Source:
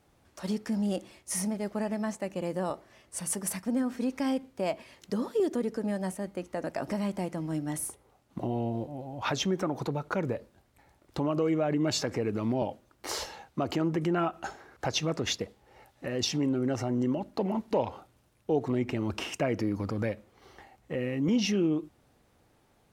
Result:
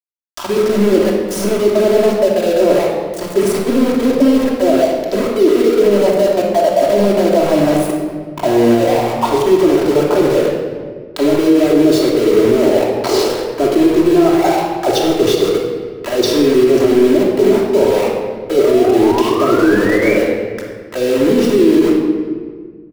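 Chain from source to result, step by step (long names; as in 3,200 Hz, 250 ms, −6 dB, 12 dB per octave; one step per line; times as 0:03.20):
high shelf with overshoot 2,700 Hz +13 dB, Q 1.5
on a send: repeating echo 135 ms, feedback 39%, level −16.5 dB
on the sum: envelope filter 410–1,800 Hz, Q 5.2, down, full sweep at −26.5 dBFS
reversed playback
downward compressor 16 to 1, threshold −44 dBFS, peak gain reduction 20.5 dB
reversed playback
centre clipping without the shift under −54 dBFS
sound drawn into the spectrogram rise, 0:18.40–0:20.14, 480–2,400 Hz −58 dBFS
rectangular room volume 2,100 cubic metres, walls mixed, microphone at 2.9 metres
boost into a limiter +33 dB
level −1 dB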